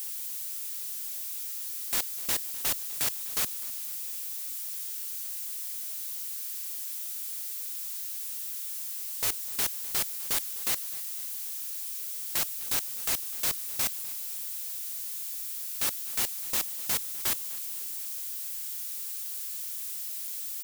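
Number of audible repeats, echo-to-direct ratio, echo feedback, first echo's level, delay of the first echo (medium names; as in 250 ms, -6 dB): 3, -17.5 dB, 47%, -18.5 dB, 253 ms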